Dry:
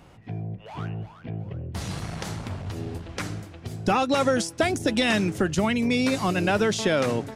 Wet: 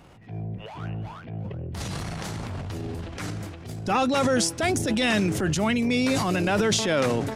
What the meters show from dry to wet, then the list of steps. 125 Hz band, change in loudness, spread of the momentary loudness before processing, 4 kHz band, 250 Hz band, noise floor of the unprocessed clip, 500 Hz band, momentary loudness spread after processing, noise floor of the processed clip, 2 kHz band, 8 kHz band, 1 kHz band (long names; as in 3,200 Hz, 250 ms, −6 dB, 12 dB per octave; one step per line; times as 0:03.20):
+0.5 dB, 0.0 dB, 13 LU, +1.0 dB, 0.0 dB, −48 dBFS, −0.5 dB, 14 LU, −41 dBFS, −0.5 dB, +4.5 dB, −0.5 dB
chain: transient designer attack −7 dB, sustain +8 dB